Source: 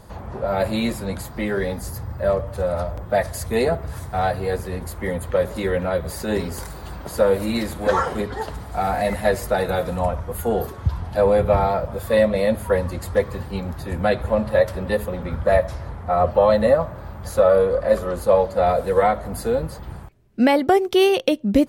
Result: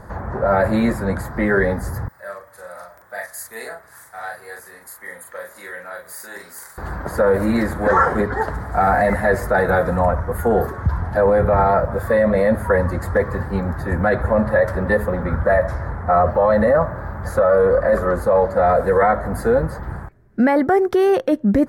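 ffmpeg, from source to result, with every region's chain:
-filter_complex "[0:a]asettb=1/sr,asplit=3[s0][s1][s2];[s0]atrim=end=2.084[s3];[s1]atrim=start=2.08:end=6.78,asetpts=PTS-STARTPTS,afade=t=in:d=0.004:c=qsin,afade=t=out:st=4.696:d=0.004:c=qsin,aderivative,asplit=2[s4][s5];[s5]adelay=40,volume=0.708[s6];[s4][s6]amix=inputs=2:normalize=0,atrim=end_sample=207270[s7];[s2]atrim=start=6.776[s8];[s3][s7]acrossfade=d=0.004:c1=hsin:c2=qsin[s9];[s9][s8]acrossfade=d=0.004:c1=qsin:c2=hsin,alimiter=limit=0.2:level=0:latency=1:release=14,highshelf=f=2200:t=q:w=3:g=-8.5,volume=1.88"

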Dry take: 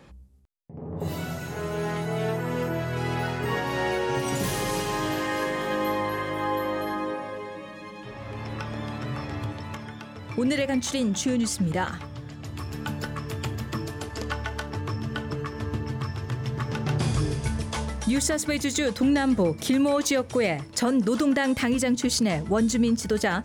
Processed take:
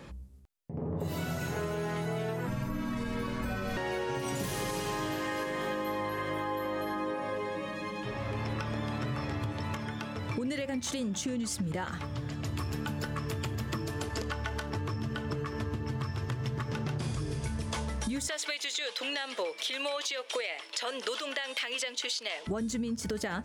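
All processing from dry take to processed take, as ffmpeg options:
-filter_complex "[0:a]asettb=1/sr,asplit=3[s0][s1][s2];[s0]atrim=end=2.474[s3];[s1]atrim=start=2.47:end=3.77,asetpts=PTS-STARTPTS,afade=t=in:d=0.004:c=qsin,afade=t=out:st=1.296:d=0.004:c=qsin,afreqshift=-360,aeval=exprs='sgn(val(0))*max(abs(val(0))-0.0015,0)':c=same[s4];[s2]atrim=start=3.766[s5];[s3][s4]acrossfade=d=0.004:c1=hsin:c2=qsin[s6];[s6][s5]acrossfade=d=0.004:c1=qsin:c2=hsin,asettb=1/sr,asplit=3[s7][s8][s9];[s7]atrim=end=18.284[s10];[s8]atrim=start=18.28:end=22.47,asetpts=PTS-STARTPTS,afade=t=in:d=0.004:c=qsin,afade=t=out:st=4.186:d=0.004:c=qsin,highpass=f=470:w=0.5412,highpass=f=470:w=1.3066,equalizer=f=3200:w=1:g=14.5,acrossover=split=7900[s11][s12];[s12]acompressor=threshold=0.0141:ratio=4:attack=1:release=60[s13];[s11][s13]amix=inputs=2:normalize=0[s14];[s9]atrim=start=22.466[s15];[s10][s14]acrossfade=d=0.004:c1=hsin:c2=qsin[s16];[s16][s15]acrossfade=d=0.004:c1=qsin:c2=hsin,bandreject=f=780:w=18,alimiter=limit=0.0841:level=0:latency=1:release=434,acompressor=threshold=0.02:ratio=6,volume=1.5"

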